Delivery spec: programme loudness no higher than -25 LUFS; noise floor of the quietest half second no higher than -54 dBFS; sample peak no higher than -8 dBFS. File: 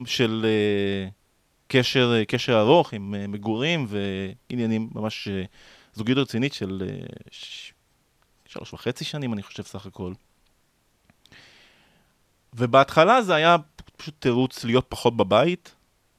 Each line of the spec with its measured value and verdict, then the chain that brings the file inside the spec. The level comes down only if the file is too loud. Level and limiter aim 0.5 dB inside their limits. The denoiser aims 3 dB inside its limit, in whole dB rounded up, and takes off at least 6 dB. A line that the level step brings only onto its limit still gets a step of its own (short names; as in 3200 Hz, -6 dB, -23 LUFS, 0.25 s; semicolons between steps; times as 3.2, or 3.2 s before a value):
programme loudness -23.0 LUFS: fail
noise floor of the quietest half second -66 dBFS: OK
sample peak -2.5 dBFS: fail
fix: gain -2.5 dB; limiter -8.5 dBFS